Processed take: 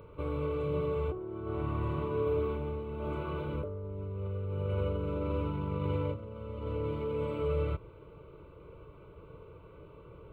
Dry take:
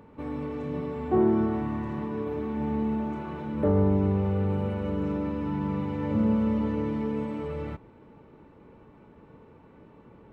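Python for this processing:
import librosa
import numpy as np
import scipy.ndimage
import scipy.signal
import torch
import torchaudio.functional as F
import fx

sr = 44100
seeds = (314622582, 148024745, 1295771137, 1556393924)

y = fx.low_shelf(x, sr, hz=140.0, db=5.5)
y = fx.over_compress(y, sr, threshold_db=-29.0, ratio=-1.0)
y = fx.fixed_phaser(y, sr, hz=1200.0, stages=8)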